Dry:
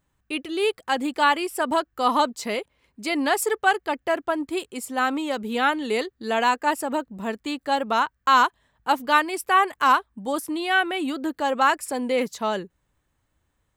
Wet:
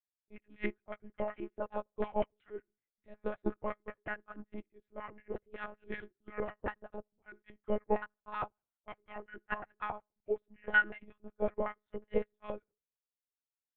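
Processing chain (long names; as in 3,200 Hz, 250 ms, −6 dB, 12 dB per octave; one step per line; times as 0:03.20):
pitch shifter swept by a sawtooth −7.5 semitones, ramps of 1,337 ms
high-pass filter 120 Hz 24 dB per octave
mains-hum notches 60/120/180/240/300/360/420 Hz
brickwall limiter −14 dBFS, peak gain reduction 9.5 dB
auto-filter band-pass square 5.4 Hz 430–1,700 Hz
high-frequency loss of the air 84 metres
feedback echo with a low-pass in the loop 76 ms, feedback 34%, low-pass 2,400 Hz, level −24 dB
one-pitch LPC vocoder at 8 kHz 210 Hz
expander for the loud parts 2.5 to 1, over −46 dBFS
level +4 dB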